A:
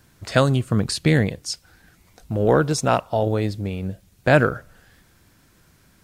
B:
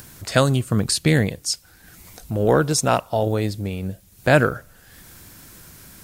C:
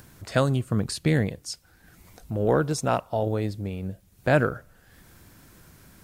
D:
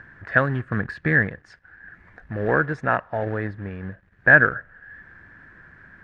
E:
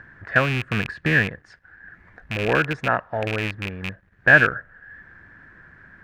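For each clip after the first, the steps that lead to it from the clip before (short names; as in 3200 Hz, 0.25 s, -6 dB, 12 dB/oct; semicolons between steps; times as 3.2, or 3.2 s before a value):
high shelf 7100 Hz +12 dB; upward compressor, threshold -34 dBFS
high shelf 2700 Hz -8 dB; gain -4.5 dB
in parallel at -6 dB: companded quantiser 4-bit; on the sum: synth low-pass 1700 Hz, resonance Q 12; gain -5 dB
rattling part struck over -28 dBFS, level -15 dBFS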